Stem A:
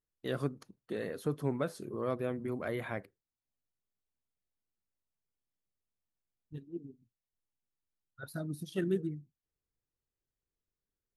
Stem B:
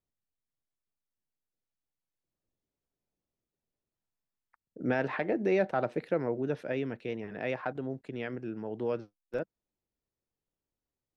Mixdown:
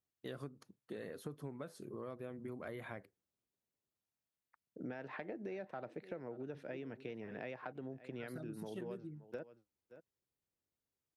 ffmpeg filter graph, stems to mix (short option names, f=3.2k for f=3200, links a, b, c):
-filter_complex "[0:a]volume=-5.5dB[a];[1:a]volume=-4.5dB,asplit=2[b][c];[c]volume=-20.5dB,aecho=0:1:573:1[d];[a][b][d]amix=inputs=3:normalize=0,highpass=66,acompressor=threshold=-41dB:ratio=12"